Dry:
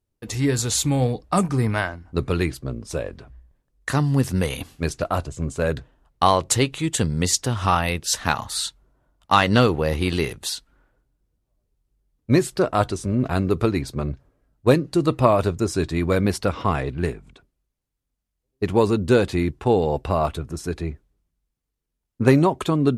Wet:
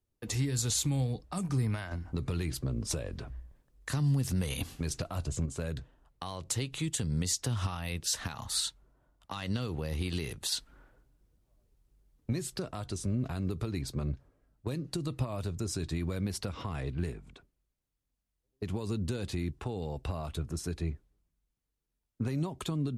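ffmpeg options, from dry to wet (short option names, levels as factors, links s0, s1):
-filter_complex "[0:a]asettb=1/sr,asplit=3[s0][s1][s2];[s0]atrim=end=1.914[s3];[s1]atrim=start=1.91:end=5.46,asetpts=PTS-STARTPTS,afade=t=in:d=0.004:c=qsin,afade=t=out:st=3.546:d=0.004:c=qsin,acontrast=76[s4];[s2]atrim=start=5.456[s5];[s3][s4]acrossfade=d=0.004:c1=hsin:c2=qsin[s6];[s6][s5]acrossfade=d=0.004:c1=qsin:c2=hsin,asettb=1/sr,asplit=3[s7][s8][s9];[s7]atrim=end=10.524[s10];[s8]atrim=start=10.52:end=12.33,asetpts=PTS-STARTPTS,afade=t=in:d=0.004:c=qsin,afade=t=out:st=1.806:d=0.004:c=qsin,acontrast=73[s11];[s9]atrim=start=12.326[s12];[s10][s11]acrossfade=d=0.004:c1=hsin:c2=qsin[s13];[s13][s12]acrossfade=d=0.004:c1=qsin:c2=hsin,acompressor=threshold=0.126:ratio=6,alimiter=limit=0.158:level=0:latency=1:release=110,acrossover=split=210|3000[s14][s15][s16];[s15]acompressor=threshold=0.0141:ratio=3[s17];[s14][s17][s16]amix=inputs=3:normalize=0,volume=0.631"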